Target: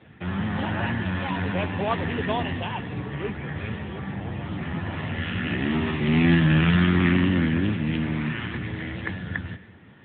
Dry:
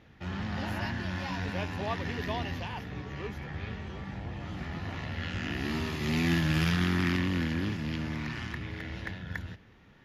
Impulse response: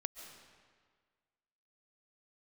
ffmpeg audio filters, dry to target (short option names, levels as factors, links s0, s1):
-filter_complex "[0:a]asplit=2[s0][s1];[1:a]atrim=start_sample=2205,asetrate=61740,aresample=44100[s2];[s1][s2]afir=irnorm=-1:irlink=0,volume=0.891[s3];[s0][s3]amix=inputs=2:normalize=0,volume=1.88" -ar 8000 -c:a libopencore_amrnb -b:a 10200